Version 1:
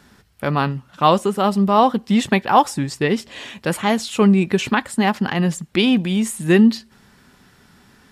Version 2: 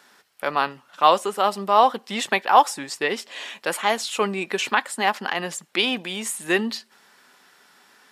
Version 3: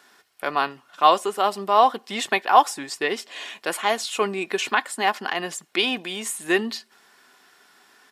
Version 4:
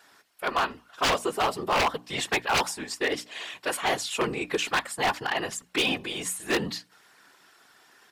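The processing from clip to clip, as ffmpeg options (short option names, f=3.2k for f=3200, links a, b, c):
-af "highpass=540"
-af "aecho=1:1:2.8:0.31,volume=-1dB"
-af "afftfilt=real='hypot(re,im)*cos(2*PI*random(0))':imag='hypot(re,im)*sin(2*PI*random(1))':win_size=512:overlap=0.75,aeval=exprs='0.0841*(abs(mod(val(0)/0.0841+3,4)-2)-1)':c=same,bandreject=f=60:t=h:w=6,bandreject=f=120:t=h:w=6,bandreject=f=180:t=h:w=6,bandreject=f=240:t=h:w=6,bandreject=f=300:t=h:w=6,volume=4dB"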